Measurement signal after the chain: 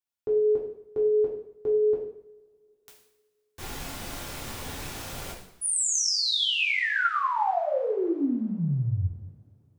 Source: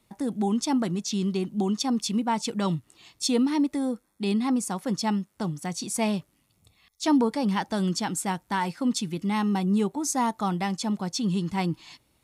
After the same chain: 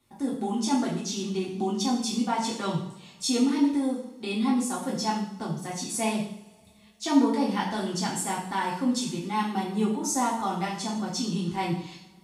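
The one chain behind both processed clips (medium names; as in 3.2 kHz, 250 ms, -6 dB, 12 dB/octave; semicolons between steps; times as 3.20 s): two-slope reverb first 0.63 s, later 2.9 s, from -26 dB, DRR -5.5 dB; trim -6.5 dB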